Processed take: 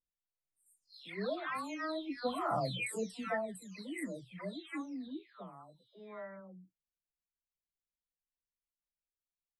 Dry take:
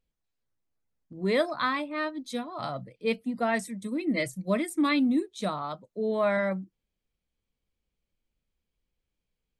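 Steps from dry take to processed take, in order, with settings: spectral delay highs early, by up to 0.673 s; Doppler pass-by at 2.51, 9 m/s, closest 2.5 m; gain +3 dB

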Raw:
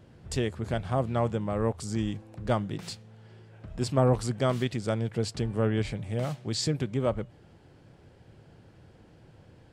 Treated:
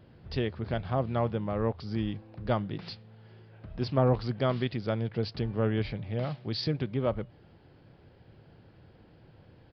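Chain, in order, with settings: downsampling 11025 Hz; gain -1.5 dB

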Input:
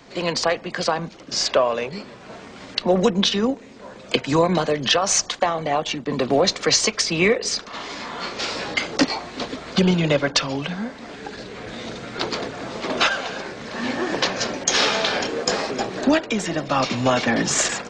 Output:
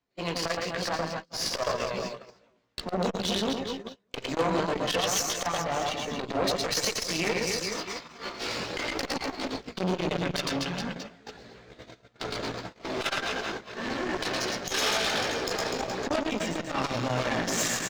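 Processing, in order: median filter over 3 samples; on a send: reverse bouncing-ball echo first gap 0.11 s, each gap 1.25×, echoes 5; on the sum: chorus voices 6, 0.91 Hz, delay 17 ms, depth 1.7 ms; gate -29 dBFS, range -33 dB; added harmonics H 5 -24 dB, 8 -19 dB, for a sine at -5.5 dBFS; reverse; upward compressor, threshold -21 dBFS; reverse; core saturation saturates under 810 Hz; gain -6.5 dB

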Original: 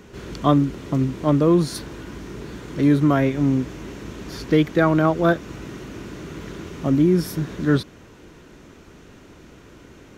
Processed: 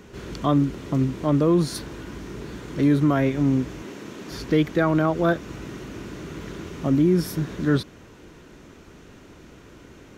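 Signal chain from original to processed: 3.82–4.31 HPF 180 Hz 12 dB/oct; in parallel at +3 dB: limiter -11.5 dBFS, peak gain reduction 9.5 dB; on the sum: gain -8.5 dB

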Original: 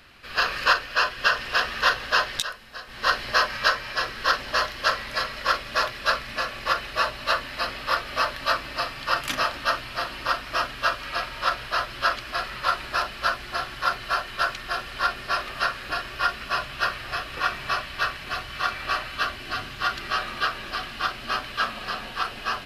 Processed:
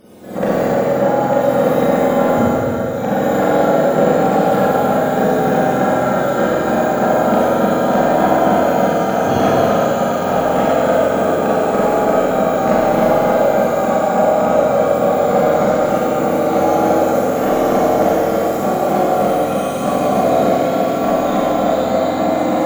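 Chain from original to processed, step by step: spectrum mirrored in octaves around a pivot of 920 Hz; low shelf 280 Hz -8 dB; negative-ratio compressor -24 dBFS, ratio -0.5; wavefolder -17 dBFS; on a send: delay with a stepping band-pass 0.111 s, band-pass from 620 Hz, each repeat 1.4 oct, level -5 dB; on the sum: Schroeder reverb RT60 3.1 s, combs from 30 ms, DRR -9 dB; gain +5.5 dB

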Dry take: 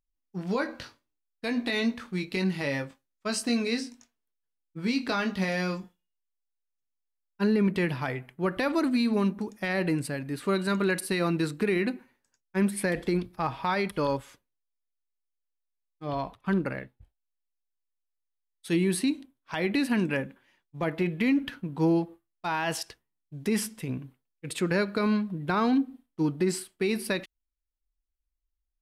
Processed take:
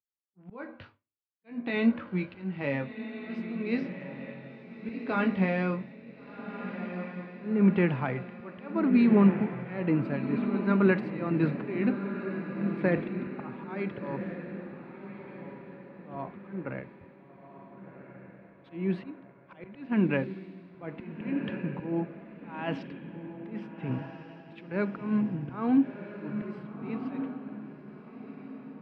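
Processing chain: speaker cabinet 100–2500 Hz, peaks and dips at 100 Hz +9 dB, 210 Hz +3 dB, 1800 Hz -5 dB; auto swell 0.302 s; on a send: diffused feedback echo 1.444 s, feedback 52%, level -6 dB; on the sum: three-band expander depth 40%

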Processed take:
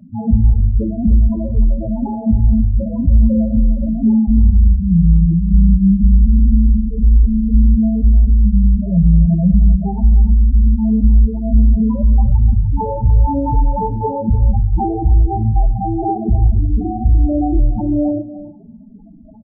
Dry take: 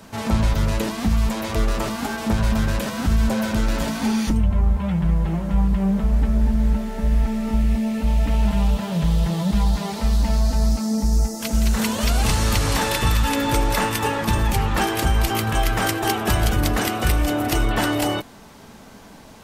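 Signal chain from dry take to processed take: LPF 1000 Hz 24 dB/oct; loudest bins only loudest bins 4; outdoor echo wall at 51 m, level -14 dB; two-slope reverb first 0.73 s, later 2 s, from -25 dB, DRR 11 dB; maximiser +9.5 dB; gain -1 dB

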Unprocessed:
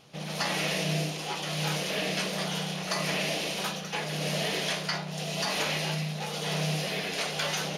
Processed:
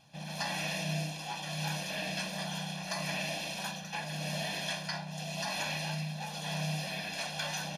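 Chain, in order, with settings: comb 1.2 ms, depth 81%; gain -8 dB

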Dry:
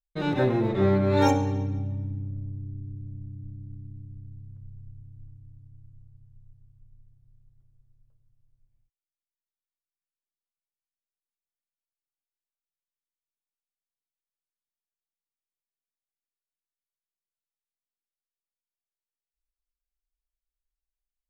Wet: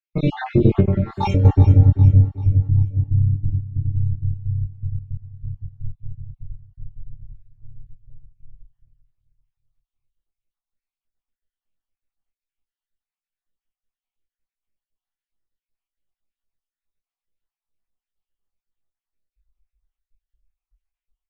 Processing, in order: random spectral dropouts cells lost 61%; doubler 22 ms -2.5 dB; feedback echo 0.39 s, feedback 43%, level -15 dB; in parallel at -7.5 dB: one-sided clip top -22.5 dBFS; on the sum: tilt -4 dB/oct; 0.8–1.45 compressor 10:1, threshold -15 dBFS, peak gain reduction 11.5 dB; bell 2700 Hz +7 dB 1.3 oct; gain +1 dB

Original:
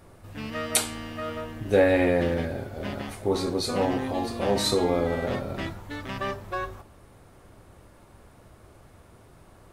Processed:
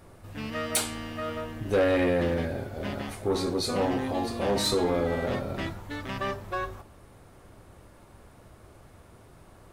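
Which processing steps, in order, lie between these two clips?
soft clip -17.5 dBFS, distortion -14 dB

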